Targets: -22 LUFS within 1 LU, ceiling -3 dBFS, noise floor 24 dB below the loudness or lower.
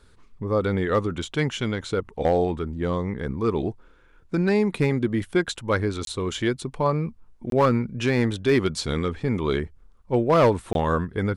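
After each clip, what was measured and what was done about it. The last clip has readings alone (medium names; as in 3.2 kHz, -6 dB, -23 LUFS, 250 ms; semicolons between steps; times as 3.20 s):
clipped samples 0.4%; clipping level -12.0 dBFS; dropouts 3; longest dropout 22 ms; loudness -24.5 LUFS; peak level -12.0 dBFS; loudness target -22.0 LUFS
-> clip repair -12 dBFS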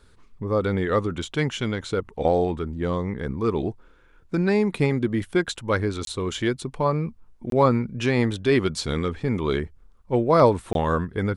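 clipped samples 0.0%; dropouts 3; longest dropout 22 ms
-> interpolate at 6.05/7.50/10.73 s, 22 ms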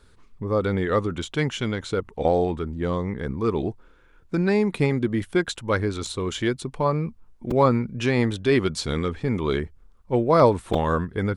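dropouts 0; loudness -24.0 LUFS; peak level -6.0 dBFS; loudness target -22.0 LUFS
-> trim +2 dB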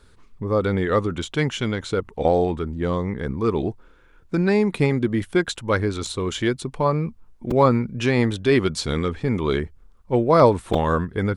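loudness -22.0 LUFS; peak level -4.0 dBFS; noise floor -52 dBFS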